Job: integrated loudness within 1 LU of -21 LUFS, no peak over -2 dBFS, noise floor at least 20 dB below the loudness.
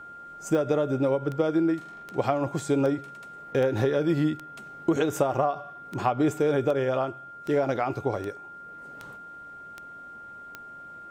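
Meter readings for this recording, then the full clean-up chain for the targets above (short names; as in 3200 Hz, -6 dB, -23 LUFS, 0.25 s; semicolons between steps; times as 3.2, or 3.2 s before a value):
clicks 14; steady tone 1400 Hz; tone level -41 dBFS; loudness -27.0 LUFS; peak -10.0 dBFS; loudness target -21.0 LUFS
-> de-click; notch 1400 Hz, Q 30; gain +6 dB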